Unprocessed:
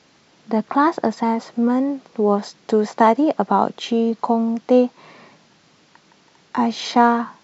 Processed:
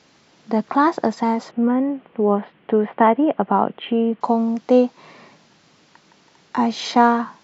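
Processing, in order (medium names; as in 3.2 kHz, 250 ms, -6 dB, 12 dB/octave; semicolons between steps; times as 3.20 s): 1.51–4.21 s: Chebyshev low-pass 3.1 kHz, order 5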